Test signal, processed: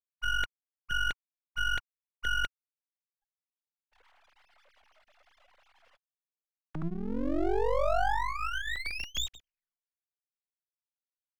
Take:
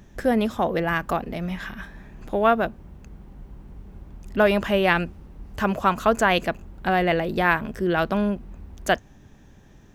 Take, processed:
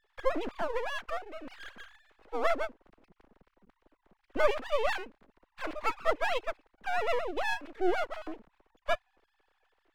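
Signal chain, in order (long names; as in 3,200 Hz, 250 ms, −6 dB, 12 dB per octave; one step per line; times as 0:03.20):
three sine waves on the formant tracks
half-wave rectification
level −5.5 dB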